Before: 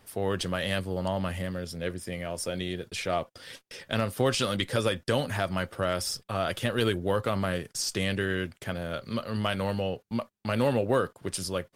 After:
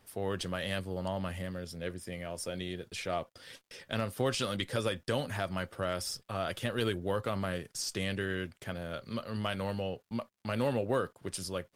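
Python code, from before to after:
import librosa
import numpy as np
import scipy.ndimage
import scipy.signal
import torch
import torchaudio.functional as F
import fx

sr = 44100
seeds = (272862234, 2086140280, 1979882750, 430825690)

y = fx.dmg_crackle(x, sr, seeds[0], per_s=170.0, level_db=-60.0)
y = y * librosa.db_to_amplitude(-5.5)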